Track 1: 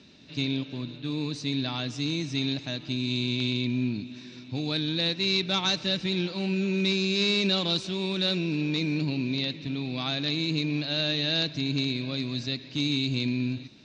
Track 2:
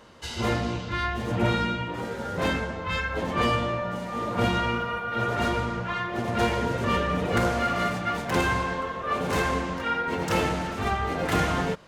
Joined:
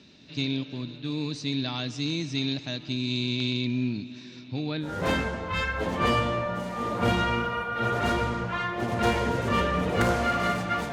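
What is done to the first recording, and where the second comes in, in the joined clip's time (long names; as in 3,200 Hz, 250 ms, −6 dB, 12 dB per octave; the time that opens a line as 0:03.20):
track 1
0:04.41–0:04.97: low-pass filter 7,100 Hz → 1,100 Hz
0:04.88: continue with track 2 from 0:02.24, crossfade 0.18 s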